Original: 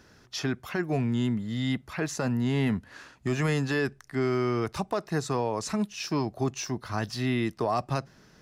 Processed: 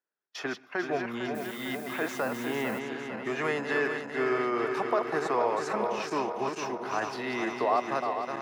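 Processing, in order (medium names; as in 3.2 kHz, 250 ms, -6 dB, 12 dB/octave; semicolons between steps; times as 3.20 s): backward echo that repeats 226 ms, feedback 78%, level -6 dB; high-pass 120 Hz; gate -37 dBFS, range -36 dB; three-band isolator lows -21 dB, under 360 Hz, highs -13 dB, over 2.7 kHz; 1.34–2.78 s: added noise blue -52 dBFS; on a send at -23.5 dB: reverberation RT60 1.1 s, pre-delay 120 ms; 5.25–5.99 s: on the sum: three bands compressed up and down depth 40%; trim +2.5 dB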